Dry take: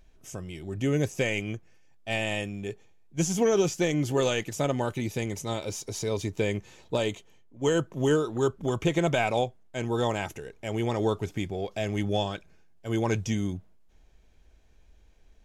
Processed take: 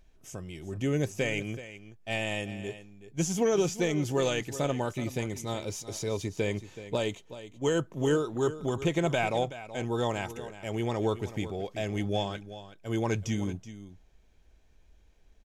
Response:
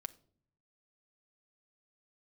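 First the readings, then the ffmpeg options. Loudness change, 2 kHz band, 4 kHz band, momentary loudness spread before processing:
−2.5 dB, −2.5 dB, −2.5 dB, 13 LU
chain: -af "aecho=1:1:376:0.2,volume=-2.5dB"

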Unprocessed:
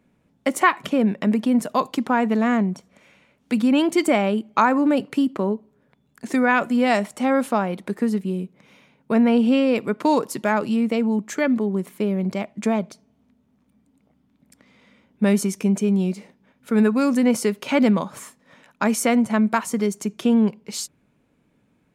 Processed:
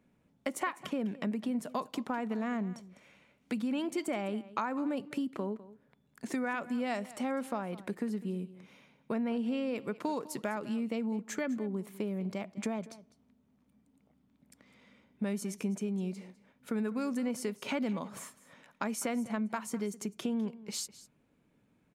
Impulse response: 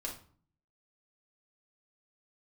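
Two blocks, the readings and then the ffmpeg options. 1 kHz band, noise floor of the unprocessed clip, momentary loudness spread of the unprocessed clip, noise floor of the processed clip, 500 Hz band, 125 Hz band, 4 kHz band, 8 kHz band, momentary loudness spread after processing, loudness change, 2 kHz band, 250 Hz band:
−15.5 dB, −65 dBFS, 9 LU, −71 dBFS, −14.5 dB, −13.5 dB, −12.5 dB, −11.0 dB, 6 LU, −14.5 dB, −15.0 dB, −14.5 dB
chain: -af "acompressor=threshold=-27dB:ratio=3,aecho=1:1:203:0.133,volume=-6.5dB"

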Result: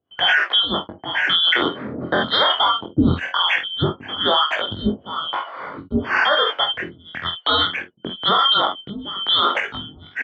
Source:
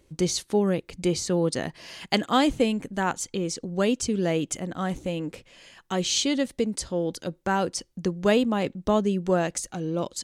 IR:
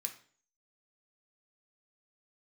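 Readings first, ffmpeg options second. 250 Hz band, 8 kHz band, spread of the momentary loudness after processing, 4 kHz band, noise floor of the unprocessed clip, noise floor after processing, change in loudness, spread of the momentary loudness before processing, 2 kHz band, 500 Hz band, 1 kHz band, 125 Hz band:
−0.5 dB, below −20 dB, 13 LU, +16.0 dB, −64 dBFS, −49 dBFS, +7.5 dB, 8 LU, +14.0 dB, −1.0 dB, +9.5 dB, +2.0 dB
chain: -filter_complex "[0:a]afftfilt=real='real(if(lt(b,272),68*(eq(floor(b/68),0)*1+eq(floor(b/68),1)*3+eq(floor(b/68),2)*0+eq(floor(b/68),3)*2)+mod(b,68),b),0)':imag='imag(if(lt(b,272),68*(eq(floor(b/68),0)*1+eq(floor(b/68),1)*3+eq(floor(b/68),2)*0+eq(floor(b/68),3)*2)+mod(b,68),b),0)':win_size=2048:overlap=0.75,highpass=frequency=69:width=0.5412,highpass=frequency=69:width=1.3066,agate=range=-18dB:threshold=-51dB:ratio=16:detection=peak,lowpass=frequency=1700:width=0.5412,lowpass=frequency=1700:width=1.3066,tiltshelf=frequency=910:gain=-4,aecho=1:1:47|58:0.316|0.178,acontrast=49,acrossover=split=440[link_01][link_02];[link_01]aeval=exprs='val(0)*(1-1/2+1/2*cos(2*PI*1*n/s))':channel_layout=same[link_03];[link_02]aeval=exprs='val(0)*(1-1/2-1/2*cos(2*PI*1*n/s))':channel_layout=same[link_04];[link_03][link_04]amix=inputs=2:normalize=0,adynamicequalizer=threshold=0.00158:dfrequency=270:dqfactor=1.2:tfrequency=270:tqfactor=1.2:attack=5:release=100:ratio=0.375:range=2:mode=boostabove:tftype=bell,flanger=delay=19.5:depth=4:speed=0.21,alimiter=level_in=30dB:limit=-1dB:release=50:level=0:latency=1,volume=-6.5dB"

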